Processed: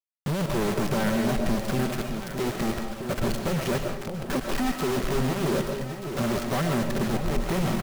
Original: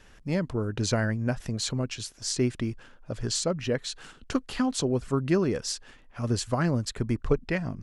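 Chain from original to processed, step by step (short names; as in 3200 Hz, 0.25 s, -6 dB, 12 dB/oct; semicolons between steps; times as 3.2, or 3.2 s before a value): LPF 1100 Hz 12 dB/oct; low shelf 200 Hz -5.5 dB; comb 5.2 ms, depth 99%; negative-ratio compressor -26 dBFS, ratio -0.5; companded quantiser 2-bit; echo with dull and thin repeats by turns 0.616 s, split 850 Hz, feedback 72%, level -7 dB; reverb RT60 0.60 s, pre-delay 85 ms, DRR 4.5 dB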